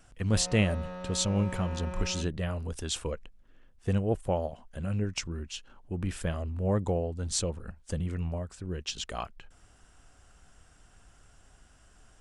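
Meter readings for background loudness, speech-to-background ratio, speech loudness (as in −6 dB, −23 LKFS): −41.5 LKFS, 9.5 dB, −32.0 LKFS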